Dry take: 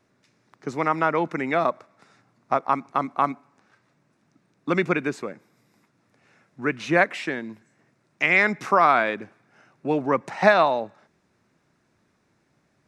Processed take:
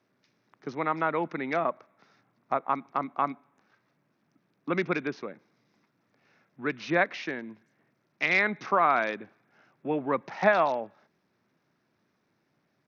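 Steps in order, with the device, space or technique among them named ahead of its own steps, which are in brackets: Bluetooth headset (HPF 120 Hz 12 dB/oct; downsampling 16000 Hz; gain -5.5 dB; SBC 64 kbps 48000 Hz)

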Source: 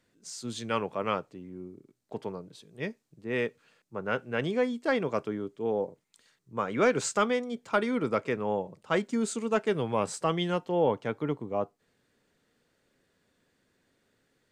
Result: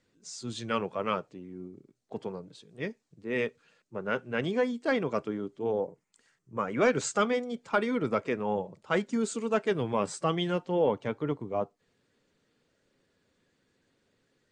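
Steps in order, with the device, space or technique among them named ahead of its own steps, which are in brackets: 5.8–6.81 bell 3800 Hz -10 dB 0.49 oct; clip after many re-uploads (LPF 8600 Hz 24 dB/oct; bin magnitudes rounded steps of 15 dB)

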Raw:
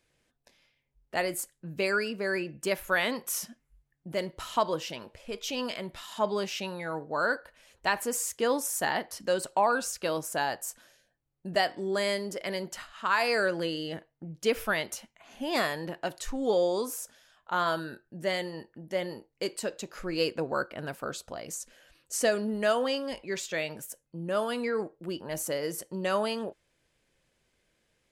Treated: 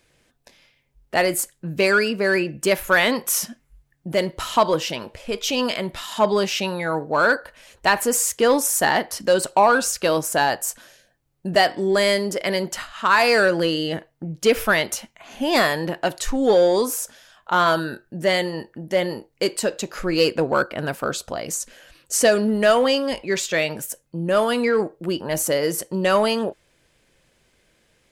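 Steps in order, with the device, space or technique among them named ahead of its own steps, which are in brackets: parallel distortion (in parallel at -5 dB: hard clip -25 dBFS, distortion -11 dB); on the sum: gain +7 dB

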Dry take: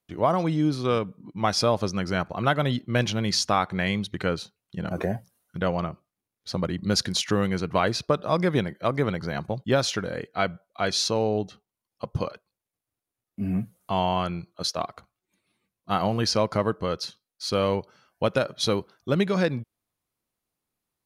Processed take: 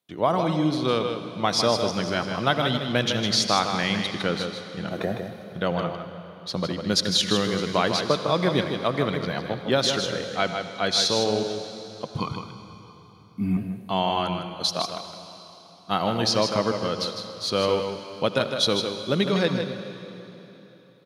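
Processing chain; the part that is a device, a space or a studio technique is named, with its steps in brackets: PA in a hall (HPF 130 Hz 12 dB/oct; bell 3600 Hz +8 dB 0.44 oct; echo 0.156 s -7 dB; reverb RT60 3.5 s, pre-delay 64 ms, DRR 9 dB); 12.18–13.57 comb 0.9 ms, depth 84%

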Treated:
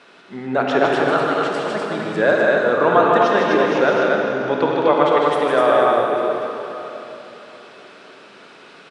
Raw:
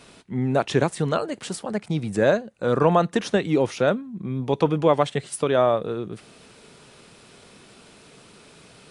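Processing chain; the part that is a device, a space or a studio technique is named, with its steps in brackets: station announcement (BPF 310–3900 Hz; bell 1500 Hz +6 dB 0.59 oct; loudspeakers at several distances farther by 53 m -4 dB, 86 m -3 dB; reverb RT60 3.6 s, pre-delay 29 ms, DRR 0.5 dB); gain +1.5 dB

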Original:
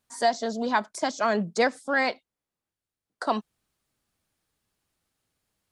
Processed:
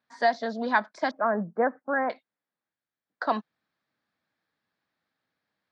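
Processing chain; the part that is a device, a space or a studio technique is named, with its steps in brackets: 1.11–2.1 inverse Chebyshev low-pass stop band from 3500 Hz, stop band 50 dB; kitchen radio (speaker cabinet 190–4200 Hz, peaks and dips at 390 Hz -6 dB, 1700 Hz +6 dB, 2900 Hz -7 dB)

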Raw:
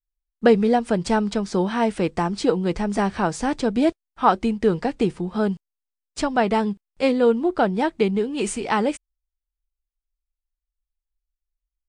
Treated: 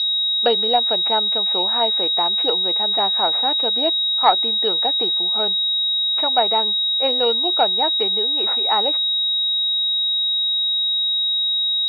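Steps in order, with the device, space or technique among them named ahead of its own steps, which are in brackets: toy sound module (decimation joined by straight lines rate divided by 6×; pulse-width modulation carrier 3800 Hz; speaker cabinet 680–4600 Hz, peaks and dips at 780 Hz +4 dB, 1100 Hz -5 dB, 1600 Hz -5 dB, 2800 Hz +4 dB, 4100 Hz +7 dB); gain +4 dB

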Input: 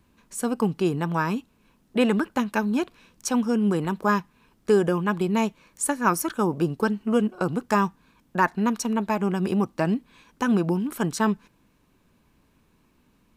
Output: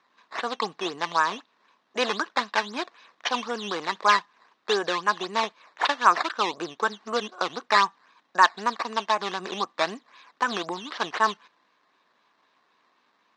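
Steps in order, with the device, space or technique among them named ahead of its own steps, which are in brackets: 3.73–4.17 high shelf 5900 Hz +12 dB; circuit-bent sampling toy (decimation with a swept rate 10×, swing 100% 3.9 Hz; speaker cabinet 570–5900 Hz, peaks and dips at 710 Hz +3 dB, 1100 Hz +8 dB, 1800 Hz +6 dB, 3800 Hz +7 dB)

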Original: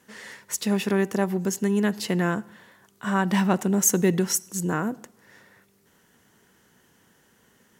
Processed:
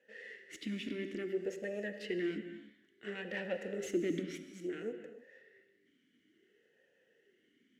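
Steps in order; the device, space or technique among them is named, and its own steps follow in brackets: talk box (tube stage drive 23 dB, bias 0.75; vowel sweep e-i 0.58 Hz); 4.26–4.82 tone controls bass -5 dB, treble -6 dB; non-linear reverb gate 0.34 s flat, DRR 8 dB; gain +5.5 dB

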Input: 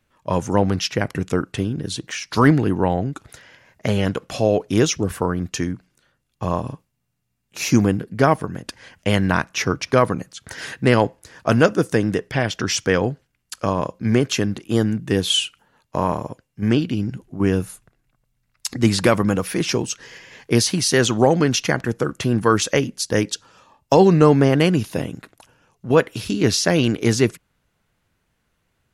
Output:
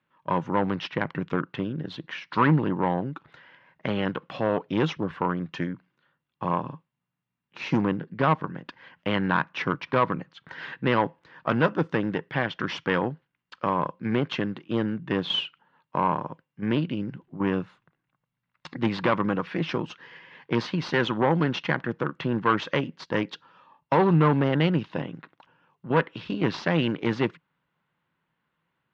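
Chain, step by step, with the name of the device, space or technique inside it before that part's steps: guitar amplifier (tube stage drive 12 dB, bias 0.7; tone controls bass -8 dB, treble -3 dB; speaker cabinet 85–3400 Hz, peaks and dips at 85 Hz -9 dB, 160 Hz +9 dB, 430 Hz -5 dB, 670 Hz -6 dB, 990 Hz +5 dB, 2400 Hz -3 dB)

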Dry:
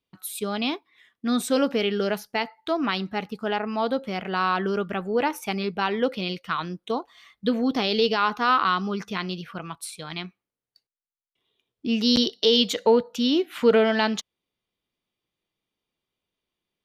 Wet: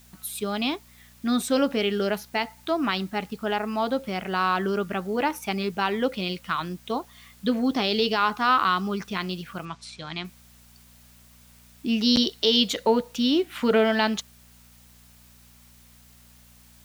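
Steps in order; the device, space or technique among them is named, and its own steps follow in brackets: video cassette with head-switching buzz (buzz 60 Hz, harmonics 4, -56 dBFS -4 dB/oct; white noise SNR 30 dB); notch 470 Hz, Q 12; 9.65–10.25 LPF 6600 Hz 24 dB/oct

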